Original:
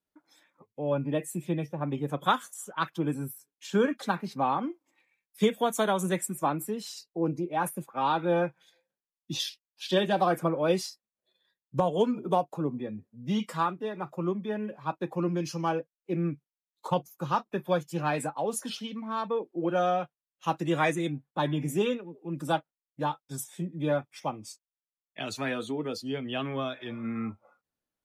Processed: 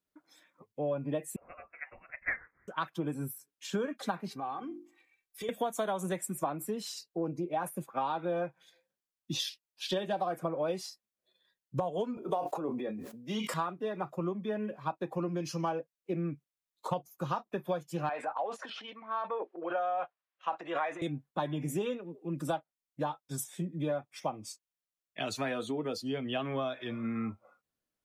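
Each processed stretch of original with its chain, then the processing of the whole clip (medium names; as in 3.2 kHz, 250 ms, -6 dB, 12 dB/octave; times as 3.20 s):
1.36–2.68 s: high-pass 1.1 kHz 24 dB/octave + frequency inversion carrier 3.1 kHz
4.30–5.49 s: hum notches 50/100/150/200/250/300/350/400 Hz + compression 4:1, threshold -39 dBFS + comb 2.6 ms, depth 57%
12.17–13.54 s: high-pass 300 Hz + doubling 23 ms -14 dB + decay stretcher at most 41 dB/s
18.09–21.02 s: transient shaper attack +1 dB, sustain +11 dB + band-pass 680–2200 Hz
whole clip: band-stop 860 Hz, Q 12; dynamic bell 730 Hz, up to +7 dB, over -41 dBFS, Q 1.4; compression 6:1, threshold -30 dBFS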